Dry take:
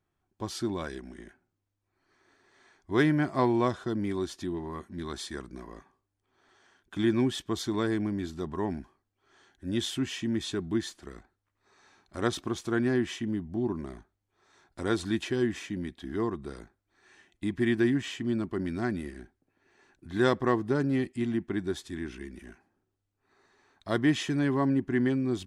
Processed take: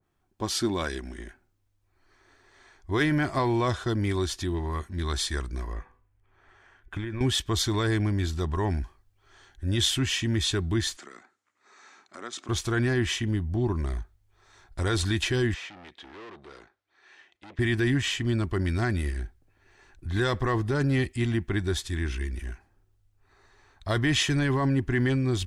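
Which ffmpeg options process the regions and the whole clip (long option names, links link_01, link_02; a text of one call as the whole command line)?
ffmpeg -i in.wav -filter_complex "[0:a]asettb=1/sr,asplit=3[link_01][link_02][link_03];[link_01]atrim=end=5.734[link_04];[link_02]atrim=start=5.73:end=7.21,asetpts=PTS-STARTPTS,afade=type=in:duration=0.004:curve=qsin,afade=type=out:start_time=1.476:duration=0.004:curve=qsin,highshelf=frequency=3100:width_type=q:width=1.5:gain=-8,acompressor=threshold=-33dB:ratio=16:attack=3.2:release=140:knee=1:detection=peak,bandreject=frequency=248.4:width_type=h:width=4,bandreject=frequency=496.8:width_type=h:width=4,bandreject=frequency=745.2:width_type=h:width=4,bandreject=frequency=993.6:width_type=h:width=4,bandreject=frequency=1242:width_type=h:width=4,bandreject=frequency=1490.4:width_type=h:width=4,bandreject=frequency=1738.8:width_type=h:width=4,bandreject=frequency=1987.2:width_type=h:width=4,bandreject=frequency=2235.6:width_type=h:width=4,bandreject=frequency=2484:width_type=h:width=4,bandreject=frequency=2732.4:width_type=h:width=4,bandreject=frequency=2980.8:width_type=h:width=4,bandreject=frequency=3229.2:width_type=h:width=4,bandreject=frequency=3477.6:width_type=h:width=4,bandreject=frequency=3726:width_type=h:width=4,bandreject=frequency=3974.4:width_type=h:width=4,bandreject=frequency=4222.8:width_type=h:width=4,bandreject=frequency=4471.2:width_type=h:width=4,bandreject=frequency=4719.6:width_type=h:width=4,bandreject=frequency=4968:width_type=h:width=4[link_05];[link_03]atrim=start=7.206[link_06];[link_04][link_05]acrossfade=duration=0.004:curve1=hsin:curve2=qsin[link_07];[link_07][link_06]acrossfade=duration=0.004:curve1=qsin:curve2=hsin,asettb=1/sr,asplit=3[link_08][link_09][link_10];[link_08]atrim=end=10.964[link_11];[link_09]atrim=start=10.96:end=12.49,asetpts=PTS-STARTPTS,afade=type=in:duration=0.004:curve=qsin,afade=type=out:start_time=1.526:duration=0.004:curve=qsin,acompressor=threshold=-48dB:ratio=2.5:attack=3.2:release=140:knee=1:detection=peak,highpass=frequency=220:width=0.5412,highpass=frequency=220:width=1.3066,equalizer=frequency=230:width_type=q:width=4:gain=5,equalizer=frequency=1300:width_type=q:width=4:gain=6,equalizer=frequency=2100:width_type=q:width=4:gain=5,equalizer=frequency=7000:width_type=q:width=4:gain=7,lowpass=frequency=9300:width=0.5412,lowpass=frequency=9300:width=1.3066[link_12];[link_10]atrim=start=12.486[link_13];[link_11][link_12]acrossfade=duration=0.004:curve1=hsin:curve2=qsin[link_14];[link_14][link_13]acrossfade=duration=0.004:curve1=qsin:curve2=hsin,asettb=1/sr,asplit=3[link_15][link_16][link_17];[link_15]atrim=end=15.544[link_18];[link_16]atrim=start=15.54:end=17.59,asetpts=PTS-STARTPTS,afade=type=in:duration=0.004:curve=qsin,afade=type=out:start_time=2.046:duration=0.004:curve=qsin,highshelf=frequency=2600:gain=8,aeval=exprs='(tanh(141*val(0)+0.55)-tanh(0.55))/141':channel_layout=same,highpass=330,lowpass=3500[link_19];[link_17]atrim=start=17.586[link_20];[link_18][link_19]acrossfade=duration=0.004:curve1=hsin:curve2=qsin[link_21];[link_21][link_20]acrossfade=duration=0.004:curve1=qsin:curve2=hsin,asubboost=boost=11.5:cutoff=64,alimiter=limit=-21.5dB:level=0:latency=1:release=10,adynamicequalizer=threshold=0.00398:dfrequency=1500:dqfactor=0.7:tfrequency=1500:tqfactor=0.7:attack=5:release=100:ratio=0.375:range=2.5:mode=boostabove:tftype=highshelf,volume=5dB" out.wav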